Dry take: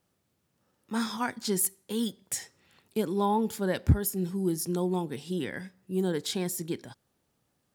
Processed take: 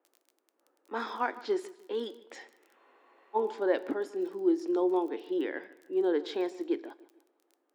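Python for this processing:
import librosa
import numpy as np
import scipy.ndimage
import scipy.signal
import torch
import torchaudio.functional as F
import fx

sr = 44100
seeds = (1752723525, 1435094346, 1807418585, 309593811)

y = fx.echo_feedback(x, sr, ms=151, feedback_pct=38, wet_db=-19.0)
y = fx.env_lowpass(y, sr, base_hz=2100.0, full_db=-24.0)
y = fx.spacing_loss(y, sr, db_at_10k=44)
y = fx.dmg_crackle(y, sr, seeds[0], per_s=21.0, level_db=-54.0)
y = scipy.signal.sosfilt(scipy.signal.ellip(4, 1.0, 50, 300.0, 'highpass', fs=sr, output='sos'), y)
y = fx.high_shelf(y, sr, hz=3500.0, db=8.0)
y = fx.rev_double_slope(y, sr, seeds[1], early_s=0.52, late_s=2.2, knee_db=-18, drr_db=16.0)
y = fx.spec_freeze(y, sr, seeds[2], at_s=2.78, hold_s=0.57)
y = y * 10.0 ** (5.5 / 20.0)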